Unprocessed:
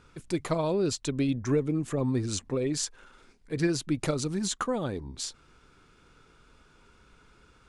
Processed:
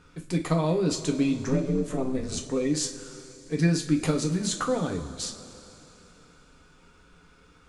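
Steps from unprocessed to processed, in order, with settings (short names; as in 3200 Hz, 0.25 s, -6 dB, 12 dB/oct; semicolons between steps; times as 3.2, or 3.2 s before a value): 1.48–2.37 ring modulator 130 Hz; two-slope reverb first 0.26 s, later 3.3 s, from -18 dB, DRR 2 dB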